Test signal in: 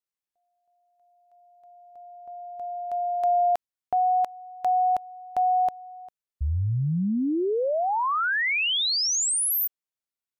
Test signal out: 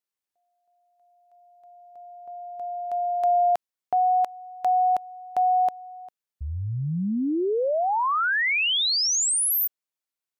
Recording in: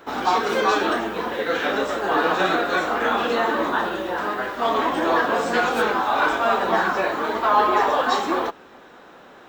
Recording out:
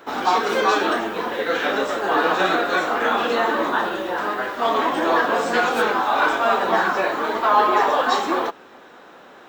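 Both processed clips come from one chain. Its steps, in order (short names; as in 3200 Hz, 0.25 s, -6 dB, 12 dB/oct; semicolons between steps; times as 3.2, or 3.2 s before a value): low shelf 110 Hz -10.5 dB; gain +1.5 dB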